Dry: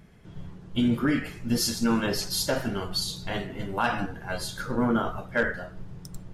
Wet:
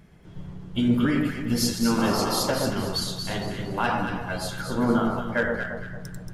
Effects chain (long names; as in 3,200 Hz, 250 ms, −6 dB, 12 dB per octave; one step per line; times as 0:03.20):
sound drawn into the spectrogram noise, 0:01.98–0:02.41, 230–1,400 Hz −30 dBFS
on a send: delay that swaps between a low-pass and a high-pass 115 ms, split 1,200 Hz, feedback 61%, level −2 dB